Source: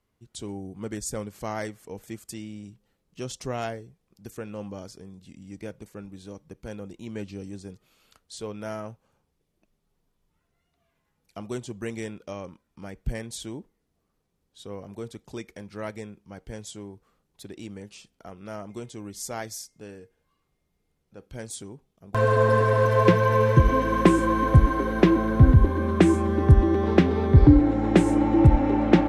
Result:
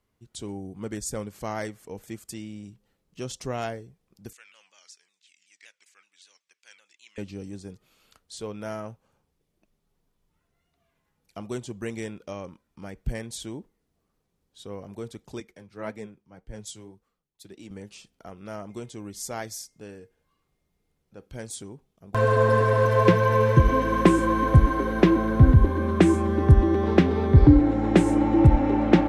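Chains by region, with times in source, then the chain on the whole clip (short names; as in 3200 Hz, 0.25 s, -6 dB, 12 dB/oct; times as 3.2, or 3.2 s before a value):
4.33–7.18 Chebyshev band-pass 2100–7500 Hz + shaped vibrato saw down 5.3 Hz, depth 160 cents
15.4–17.71 flange 1.8 Hz, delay 3.2 ms, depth 5.5 ms, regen +57% + three-band expander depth 70%
whole clip: dry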